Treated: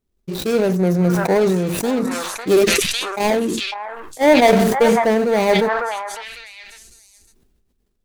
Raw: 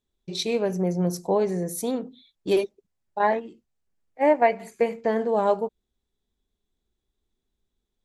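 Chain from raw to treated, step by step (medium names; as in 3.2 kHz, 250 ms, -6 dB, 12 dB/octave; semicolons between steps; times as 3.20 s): median filter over 41 samples; treble shelf 4.9 kHz +11.5 dB; on a send: repeats whose band climbs or falls 552 ms, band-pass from 1.2 kHz, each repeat 1.4 oct, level -5 dB; on the sum: decay stretcher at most 28 dB/s; trim +7.5 dB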